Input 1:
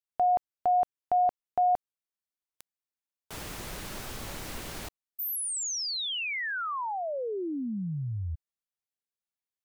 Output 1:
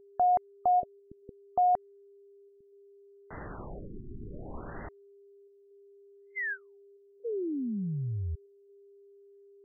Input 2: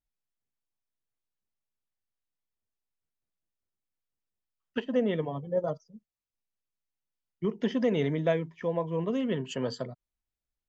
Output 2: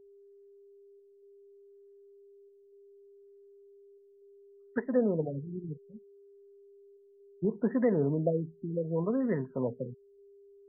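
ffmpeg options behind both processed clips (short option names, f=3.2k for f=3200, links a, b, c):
-af "aeval=exprs='val(0)+0.002*sin(2*PI*400*n/s)':c=same,afftfilt=real='re*lt(b*sr/1024,390*pow(2100/390,0.5+0.5*sin(2*PI*0.67*pts/sr)))':imag='im*lt(b*sr/1024,390*pow(2100/390,0.5+0.5*sin(2*PI*0.67*pts/sr)))':win_size=1024:overlap=0.75"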